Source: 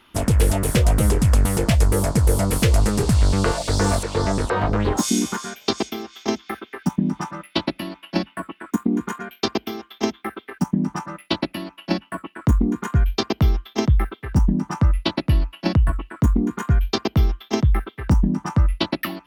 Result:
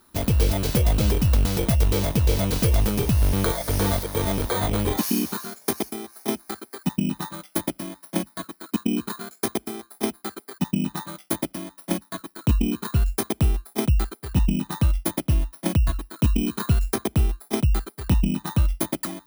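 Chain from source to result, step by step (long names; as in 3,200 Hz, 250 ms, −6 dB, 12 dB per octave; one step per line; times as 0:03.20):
samples in bit-reversed order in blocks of 16 samples
0:16.19–0:17.15: multiband upward and downward compressor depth 70%
level −3 dB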